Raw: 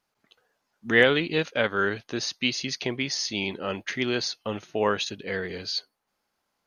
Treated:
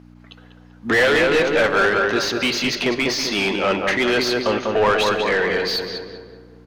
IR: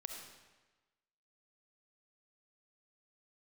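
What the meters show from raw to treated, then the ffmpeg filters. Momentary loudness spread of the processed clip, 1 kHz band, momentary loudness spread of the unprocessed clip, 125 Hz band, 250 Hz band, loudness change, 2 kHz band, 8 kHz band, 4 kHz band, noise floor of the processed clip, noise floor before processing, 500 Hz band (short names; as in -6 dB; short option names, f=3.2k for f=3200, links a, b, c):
6 LU, +11.0 dB, 11 LU, +3.5 dB, +7.0 dB, +8.0 dB, +8.0 dB, +5.0 dB, +6.5 dB, -46 dBFS, -79 dBFS, +9.0 dB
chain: -filter_complex "[0:a]asplit=2[a][b];[b]adelay=195,lowpass=f=1.6k:p=1,volume=-5dB,asplit=2[c][d];[d]adelay=195,lowpass=f=1.6k:p=1,volume=0.52,asplit=2[e][f];[f]adelay=195,lowpass=f=1.6k:p=1,volume=0.52,asplit=2[g][h];[h]adelay=195,lowpass=f=1.6k:p=1,volume=0.52,asplit=2[i][j];[j]adelay=195,lowpass=f=1.6k:p=1,volume=0.52,asplit=2[k][l];[l]adelay=195,lowpass=f=1.6k:p=1,volume=0.52,asplit=2[m][n];[n]adelay=195,lowpass=f=1.6k:p=1,volume=0.52[o];[a][c][e][g][i][k][m][o]amix=inputs=8:normalize=0,aeval=exprs='val(0)+0.00398*(sin(2*PI*60*n/s)+sin(2*PI*2*60*n/s)/2+sin(2*PI*3*60*n/s)/3+sin(2*PI*4*60*n/s)/4+sin(2*PI*5*60*n/s)/5)':c=same,asplit=2[p][q];[q]highpass=f=720:p=1,volume=28dB,asoftclip=type=tanh:threshold=-4.5dB[r];[p][r]amix=inputs=2:normalize=0,lowpass=f=1.9k:p=1,volume=-6dB,asplit=2[s][t];[1:a]atrim=start_sample=2205,asetrate=40572,aresample=44100[u];[t][u]afir=irnorm=-1:irlink=0,volume=-6dB[v];[s][v]amix=inputs=2:normalize=0,volume=-5dB"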